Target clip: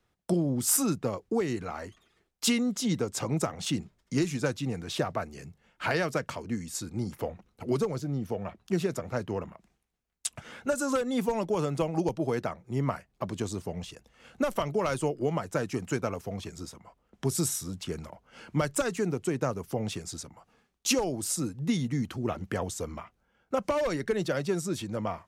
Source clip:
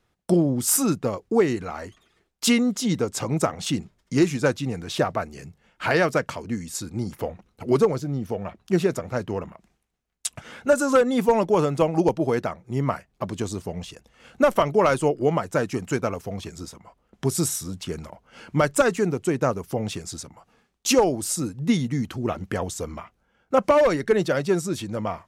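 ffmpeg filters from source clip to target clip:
-filter_complex "[0:a]acrossover=split=160|3000[a][b][c];[b]acompressor=threshold=-21dB:ratio=6[d];[a][d][c]amix=inputs=3:normalize=0,volume=-4dB"

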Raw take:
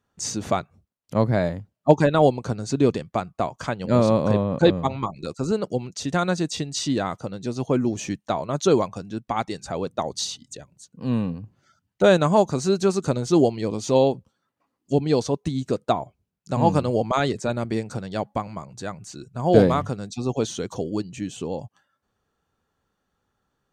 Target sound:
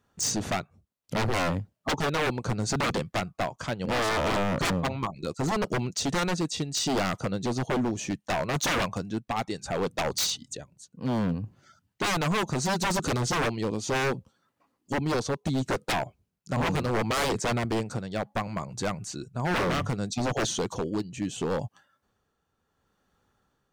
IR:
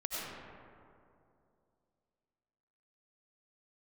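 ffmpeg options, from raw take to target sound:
-af "tremolo=f=0.69:d=0.53,acontrast=53,aeval=exprs='0.112*(abs(mod(val(0)/0.112+3,4)-2)-1)':c=same,volume=-2dB"

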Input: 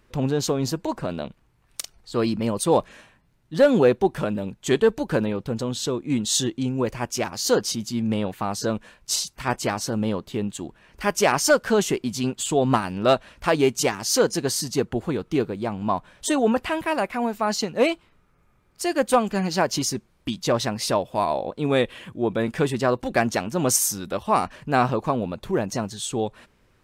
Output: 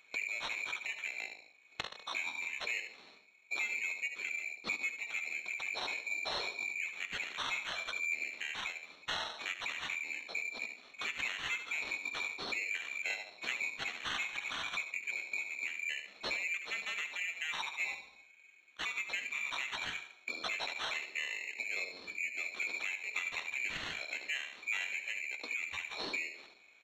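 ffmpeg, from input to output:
-filter_complex "[0:a]afftfilt=real='real(if(lt(b,272),68*(eq(floor(b/68),0)*2+eq(floor(b/68),1)*3+eq(floor(b/68),2)*0+eq(floor(b/68),3)*1)+mod(b,68),b),0)':imag='imag(if(lt(b,272),68*(eq(floor(b/68),0)*2+eq(floor(b/68),1)*3+eq(floor(b/68),2)*0+eq(floor(b/68),3)*1)+mod(b,68),b),0)':win_size=2048:overlap=0.75,equalizer=f=190:t=o:w=0.46:g=-10.5,acrossover=split=730|1400[a][b][c];[a]asoftclip=type=tanh:threshold=-38.5dB[d];[d][b][c]amix=inputs=3:normalize=0,acrossover=split=250 2700:gain=0.0891 1 0.158[e][f][g];[e][f][g]amix=inputs=3:normalize=0,asplit=2[h][i];[i]adelay=73,lowpass=f=2.2k:p=1,volume=-5.5dB,asplit=2[j][k];[k]adelay=73,lowpass=f=2.2k:p=1,volume=0.4,asplit=2[l][m];[m]adelay=73,lowpass=f=2.2k:p=1,volume=0.4,asplit=2[n][o];[o]adelay=73,lowpass=f=2.2k:p=1,volume=0.4,asplit=2[p][q];[q]adelay=73,lowpass=f=2.2k:p=1,volume=0.4[r];[j][l][n][p][r]amix=inputs=5:normalize=0[s];[h][s]amix=inputs=2:normalize=0,acompressor=threshold=-43dB:ratio=4,acrusher=samples=7:mix=1:aa=0.000001,flanger=delay=7.5:depth=6.9:regen=67:speed=0.23:shape=triangular,asetrate=33038,aresample=44100,atempo=1.33484,lowpass=f=4.3k:t=q:w=13,volume=7dB"

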